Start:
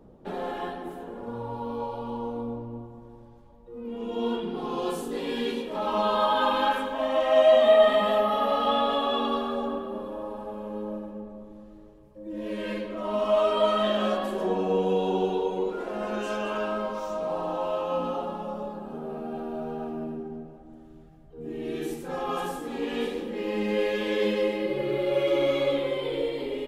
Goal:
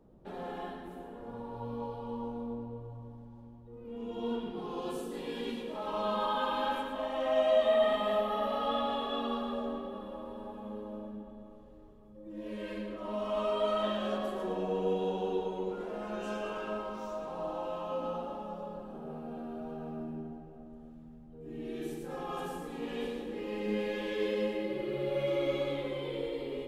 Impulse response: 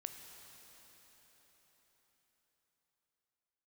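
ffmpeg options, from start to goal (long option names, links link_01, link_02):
-filter_complex "[0:a]asplit=2[link_01][link_02];[1:a]atrim=start_sample=2205,lowshelf=frequency=290:gain=11.5,adelay=115[link_03];[link_02][link_03]afir=irnorm=-1:irlink=0,volume=-3.5dB[link_04];[link_01][link_04]amix=inputs=2:normalize=0,volume=-9dB"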